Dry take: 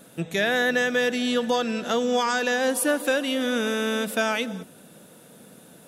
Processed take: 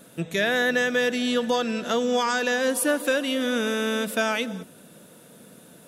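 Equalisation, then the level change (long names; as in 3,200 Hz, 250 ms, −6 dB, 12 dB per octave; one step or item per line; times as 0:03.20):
notch filter 790 Hz, Q 12
0.0 dB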